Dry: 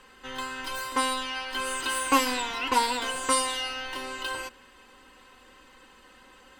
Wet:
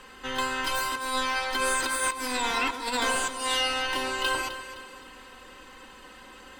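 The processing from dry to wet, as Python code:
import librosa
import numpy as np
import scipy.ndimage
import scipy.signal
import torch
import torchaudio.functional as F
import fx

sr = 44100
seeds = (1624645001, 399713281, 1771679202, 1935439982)

y = fx.notch(x, sr, hz=2900.0, q=6.8, at=(0.98, 3.13))
y = fx.over_compress(y, sr, threshold_db=-31.0, ratio=-0.5)
y = fx.echo_alternate(y, sr, ms=129, hz=1500.0, feedback_pct=65, wet_db=-8.5)
y = y * 10.0 ** (3.0 / 20.0)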